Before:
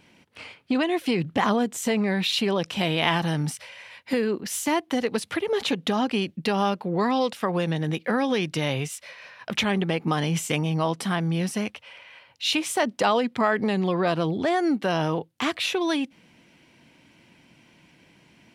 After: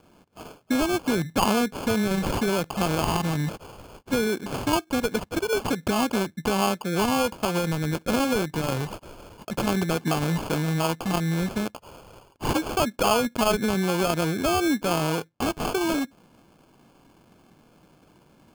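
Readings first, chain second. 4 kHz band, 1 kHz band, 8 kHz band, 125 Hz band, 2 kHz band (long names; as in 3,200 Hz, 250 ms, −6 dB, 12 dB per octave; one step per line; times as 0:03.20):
−2.5 dB, 0.0 dB, +1.5 dB, +0.5 dB, −1.5 dB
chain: decimation without filtering 23×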